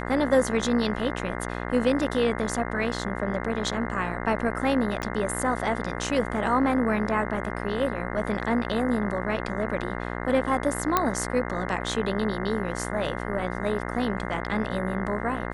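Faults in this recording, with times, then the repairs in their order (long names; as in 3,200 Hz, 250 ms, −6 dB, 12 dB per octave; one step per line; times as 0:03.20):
mains buzz 60 Hz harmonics 35 −32 dBFS
0:05.02: click −18 dBFS
0:10.97: click −6 dBFS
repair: click removal
hum removal 60 Hz, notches 35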